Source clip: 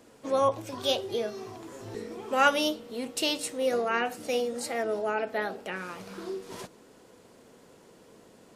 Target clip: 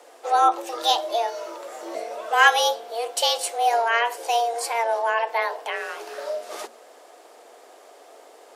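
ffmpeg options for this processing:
-af "afreqshift=230,volume=6.5dB"

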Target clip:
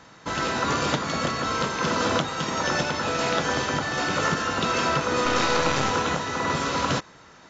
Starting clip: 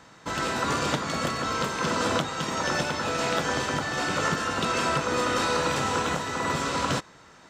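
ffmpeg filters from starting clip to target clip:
-filter_complex "[0:a]asettb=1/sr,asplit=3[a][b][c];[a]atrim=end=5.254[d];[b]atrim=start=5.25:end=5.91,asetpts=PTS-STARTPTS,afade=t=in:d=0.004:c=qsin,afade=t=out:st=0.656:d=0.004:c=qsin,aeval=exprs='0.224*(cos(1*acos(clip(val(0)/0.224,-1,1)))-cos(1*PI/2))+0.0501*(cos(4*acos(clip(val(0)/0.224,-1,1)))-cos(4*PI/2))':c=same[e];[c]atrim=start=5.906[f];[d][e]acrossfade=d=0.004:c1=hsin:c2=qsin[g];[g][f]acrossfade=d=0.004:c1=qsin:c2=hsin,volume=2dB" -ar 16000 -c:a mp2 -b:a 128k

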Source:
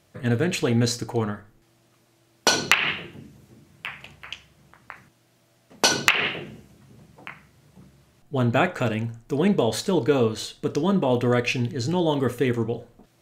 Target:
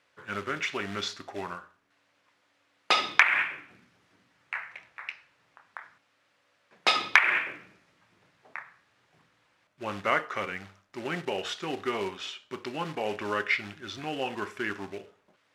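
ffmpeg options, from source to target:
-af "acrusher=bits=5:mode=log:mix=0:aa=0.000001,bandpass=f=2k:t=q:w=0.89:csg=0,asetrate=37485,aresample=44100"

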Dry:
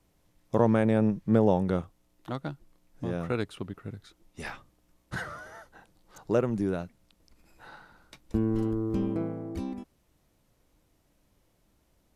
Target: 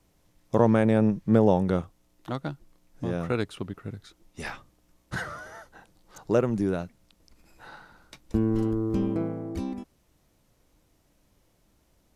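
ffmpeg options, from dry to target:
-af "equalizer=f=6k:w=1.5:g=2,volume=2.5dB"

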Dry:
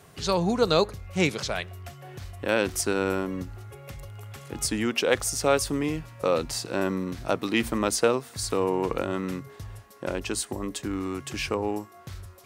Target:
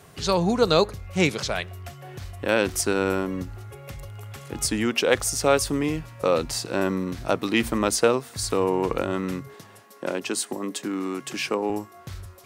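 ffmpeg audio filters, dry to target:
-filter_complex "[0:a]asettb=1/sr,asplit=3[a][b][c];[a]atrim=end=9.544[d];[b]atrim=start=9.54:end=11.7,asetpts=PTS-STARTPTS,afade=t=in:d=0.004:c=qsin,afade=t=out:st=2.156:d=0.004:c=qsin,highpass=f=170:w=0.5412,highpass=f=170:w=1.3066[e];[c]atrim=start=11.696[f];[d][e]acrossfade=d=0.004:c1=hsin:c2=qsin[g];[g][f]acrossfade=d=0.004:c1=qsin:c2=hsin,volume=2.5dB"

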